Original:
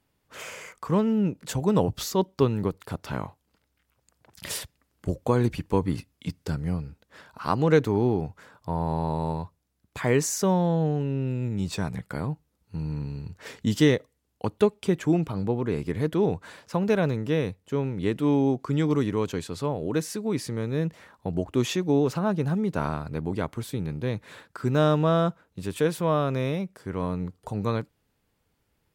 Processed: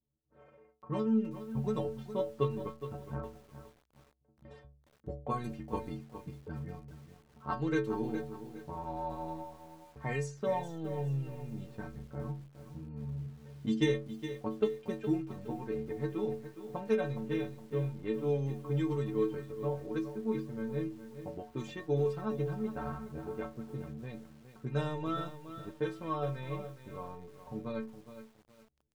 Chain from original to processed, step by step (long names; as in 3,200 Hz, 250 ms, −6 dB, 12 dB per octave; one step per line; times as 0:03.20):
low-pass that shuts in the quiet parts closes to 420 Hz, open at −17.5 dBFS
transient designer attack +4 dB, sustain −7 dB
stiff-string resonator 66 Hz, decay 0.65 s, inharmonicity 0.03
feedback echo at a low word length 415 ms, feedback 35%, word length 9 bits, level −11 dB